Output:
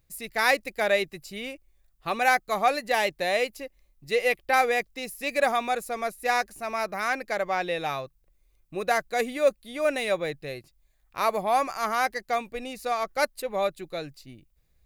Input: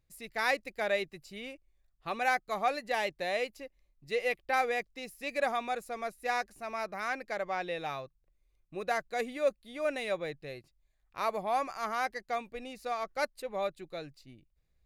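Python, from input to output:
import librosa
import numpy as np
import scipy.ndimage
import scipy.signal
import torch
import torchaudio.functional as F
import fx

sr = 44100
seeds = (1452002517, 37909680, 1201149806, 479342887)

y = fx.high_shelf(x, sr, hz=10000.0, db=10.5)
y = y * 10.0 ** (7.0 / 20.0)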